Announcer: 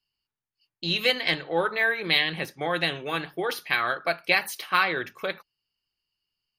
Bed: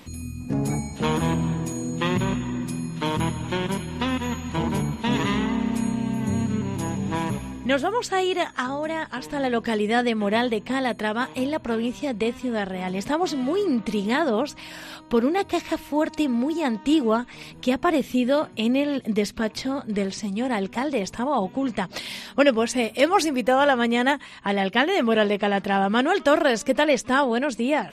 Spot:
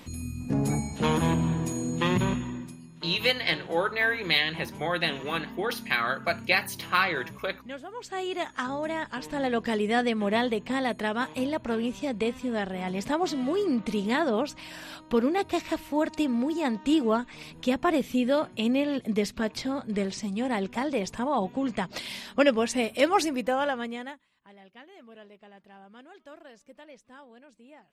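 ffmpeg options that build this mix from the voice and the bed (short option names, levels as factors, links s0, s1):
-filter_complex "[0:a]adelay=2200,volume=0.841[s0];[1:a]volume=4.22,afade=t=out:st=2.24:d=0.53:silence=0.158489,afade=t=in:st=7.89:d=0.87:silence=0.199526,afade=t=out:st=23.13:d=1.09:silence=0.0501187[s1];[s0][s1]amix=inputs=2:normalize=0"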